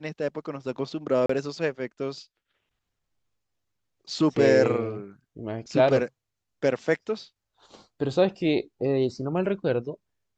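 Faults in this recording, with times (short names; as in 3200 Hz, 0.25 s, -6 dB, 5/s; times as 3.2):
1.26–1.29 gap 34 ms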